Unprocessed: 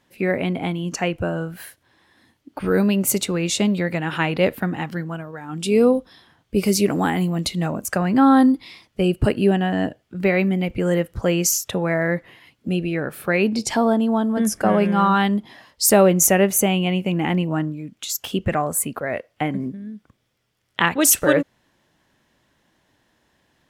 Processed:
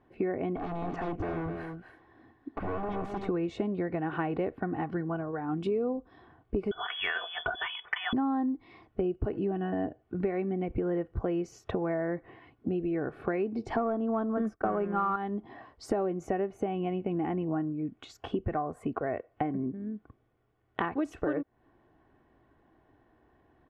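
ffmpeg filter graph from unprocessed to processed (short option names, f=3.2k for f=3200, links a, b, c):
-filter_complex "[0:a]asettb=1/sr,asplit=3[a][b][c];[a]atrim=end=0.564[d];[b]atrim=start=0.56:end=3.29,asetpts=PTS-STARTPTS,afade=t=in:d=0.004:c=qsin,afade=t=out:st=2.726:d=0.004:c=qsin,acompressor=threshold=-23dB:ratio=6:attack=3.2:release=140:knee=1:detection=peak,aeval=exprs='0.0422*(abs(mod(val(0)/0.0422+3,4)-2)-1)':c=same,aecho=1:1:258:0.447,atrim=end_sample=120393[e];[c]atrim=start=3.286[f];[d][e]acrossfade=d=0.004:c1=hsin:c2=qsin[g];[g][f]acrossfade=d=0.004:c1=qsin:c2=hsin,asettb=1/sr,asplit=3[h][i][j];[h]atrim=end=6.714[k];[i]atrim=start=6.71:end=8.13,asetpts=PTS-STARTPTS,afade=t=in:d=0.004:c=qsin,afade=t=out:st=1.416:d=0.004:c=qsin,equalizer=f=2k:w=1.3:g=12.5,aecho=1:1:3.8:0.47,atrim=end_sample=62622,lowpass=f=3.1k:t=q:w=0.5098,lowpass=f=3.1k:t=q:w=0.6013,lowpass=f=3.1k:t=q:w=0.9,lowpass=f=3.1k:t=q:w=2.563,afreqshift=-3600[l];[j]atrim=start=8.126[m];[k][l]acrossfade=d=0.004:c1=hsin:c2=qsin[n];[n][m]acrossfade=d=0.004:c1=qsin:c2=hsin,asettb=1/sr,asplit=3[o][p][q];[o]atrim=end=9.334[r];[p]atrim=start=9.33:end=9.74,asetpts=PTS-STARTPTS,afade=t=in:d=0.004:c=qsin,afade=t=out:st=0.406:d=0.004:c=qsin,acompressor=mode=upward:threshold=-21dB:ratio=2.5:attack=3.2:release=140:knee=2.83:detection=peak,aecho=1:1:6.1:0.55,atrim=end_sample=18081[s];[q]atrim=start=9.736[t];[r][s]acrossfade=d=0.004:c1=hsin:c2=qsin[u];[u][t]acrossfade=d=0.004:c1=qsin:c2=hsin,asettb=1/sr,asplit=3[v][w][x];[v]atrim=end=13.764[y];[w]atrim=start=13.76:end=15.16,asetpts=PTS-STARTPTS,afade=t=in:d=0.004:c=qsin,afade=t=out:st=1.396:d=0.004:c=qsin,equalizer=f=1.3k:t=o:w=0.3:g=11.5,agate=range=-33dB:threshold=-19dB:ratio=3:release=100:detection=peak,acontrast=42[z];[x]atrim=start=15.156[aa];[y][z]acrossfade=d=0.004:c1=hsin:c2=qsin[ab];[ab][aa]acrossfade=d=0.004:c1=qsin:c2=hsin,lowpass=1.1k,aecho=1:1:2.7:0.49,acompressor=threshold=-30dB:ratio=6,volume=1.5dB"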